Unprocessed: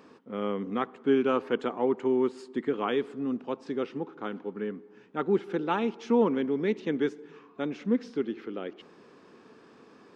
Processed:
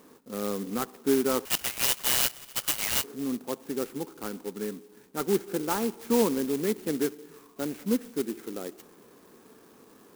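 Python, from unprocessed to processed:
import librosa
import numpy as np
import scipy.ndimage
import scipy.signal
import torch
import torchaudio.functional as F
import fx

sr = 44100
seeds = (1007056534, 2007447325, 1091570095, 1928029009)

y = fx.cvsd(x, sr, bps=32000)
y = fx.freq_invert(y, sr, carrier_hz=3300, at=(1.45, 3.04))
y = fx.clock_jitter(y, sr, seeds[0], jitter_ms=0.089)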